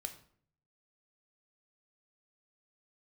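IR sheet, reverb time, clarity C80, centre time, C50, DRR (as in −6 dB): 0.55 s, 15.0 dB, 10 ms, 11.5 dB, 6.0 dB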